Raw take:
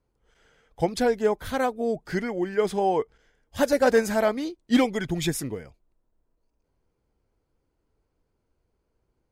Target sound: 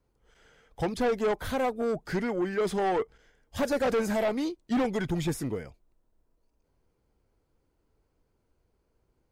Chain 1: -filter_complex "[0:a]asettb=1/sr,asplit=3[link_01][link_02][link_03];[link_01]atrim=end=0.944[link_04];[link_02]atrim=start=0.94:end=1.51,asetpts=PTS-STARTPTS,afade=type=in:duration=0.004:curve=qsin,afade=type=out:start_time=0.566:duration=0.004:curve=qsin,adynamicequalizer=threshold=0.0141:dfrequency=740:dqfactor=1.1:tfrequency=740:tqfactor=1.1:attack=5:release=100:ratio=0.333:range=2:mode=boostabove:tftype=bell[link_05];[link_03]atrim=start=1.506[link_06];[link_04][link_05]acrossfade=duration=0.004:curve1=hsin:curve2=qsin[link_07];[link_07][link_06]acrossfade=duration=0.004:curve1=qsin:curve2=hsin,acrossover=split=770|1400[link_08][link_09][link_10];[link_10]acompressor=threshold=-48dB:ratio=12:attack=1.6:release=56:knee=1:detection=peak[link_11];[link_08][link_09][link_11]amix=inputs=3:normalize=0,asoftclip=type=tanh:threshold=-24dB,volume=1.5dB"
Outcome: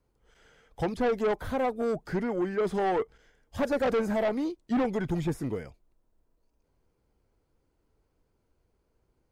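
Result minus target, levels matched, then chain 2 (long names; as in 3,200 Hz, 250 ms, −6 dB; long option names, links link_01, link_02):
downward compressor: peak gain reduction +9.5 dB
-filter_complex "[0:a]asettb=1/sr,asplit=3[link_01][link_02][link_03];[link_01]atrim=end=0.944[link_04];[link_02]atrim=start=0.94:end=1.51,asetpts=PTS-STARTPTS,afade=type=in:duration=0.004:curve=qsin,afade=type=out:start_time=0.566:duration=0.004:curve=qsin,adynamicequalizer=threshold=0.0141:dfrequency=740:dqfactor=1.1:tfrequency=740:tqfactor=1.1:attack=5:release=100:ratio=0.333:range=2:mode=boostabove:tftype=bell[link_05];[link_03]atrim=start=1.506[link_06];[link_04][link_05]acrossfade=duration=0.004:curve1=hsin:curve2=qsin[link_07];[link_07][link_06]acrossfade=duration=0.004:curve1=qsin:curve2=hsin,acrossover=split=770|1400[link_08][link_09][link_10];[link_10]acompressor=threshold=-37.5dB:ratio=12:attack=1.6:release=56:knee=1:detection=peak[link_11];[link_08][link_09][link_11]amix=inputs=3:normalize=0,asoftclip=type=tanh:threshold=-24dB,volume=1.5dB"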